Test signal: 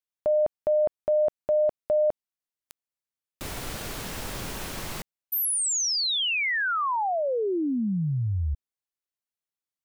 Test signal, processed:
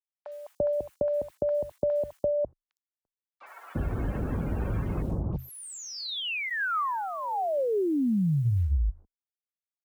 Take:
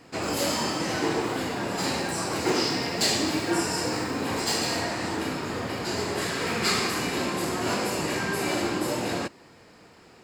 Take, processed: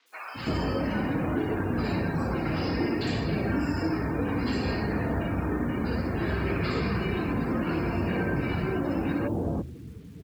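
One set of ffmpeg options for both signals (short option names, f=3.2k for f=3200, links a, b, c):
-filter_complex "[0:a]highpass=f=70:w=0.5412,highpass=f=70:w=1.3066,aemphasis=mode=reproduction:type=riaa,bandreject=f=50:t=h:w=6,bandreject=f=100:t=h:w=6,bandreject=f=150:t=h:w=6,afftdn=nr=28:nf=-39,bandreject=f=2k:w=15,aphaser=in_gain=1:out_gain=1:delay=3.8:decay=0.21:speed=0.63:type=sinusoidal,asplit=2[a][b];[b]acompressor=threshold=-30dB:ratio=20:attack=0.63:release=110:knee=6:detection=rms,volume=-3dB[c];[a][c]amix=inputs=2:normalize=0,equalizer=f=16k:t=o:w=0.78:g=-15,acrusher=bits=9:mix=0:aa=0.000001,acrossover=split=1300|3500[d][e][f];[d]acompressor=threshold=-28dB:ratio=4[g];[e]acompressor=threshold=-38dB:ratio=4[h];[f]acompressor=threshold=-42dB:ratio=4[i];[g][h][i]amix=inputs=3:normalize=0,afreqshift=-21,acrossover=split=900|5000[j][k][l];[l]adelay=60[m];[j]adelay=340[n];[n][k][m]amix=inputs=3:normalize=0,volume=2dB"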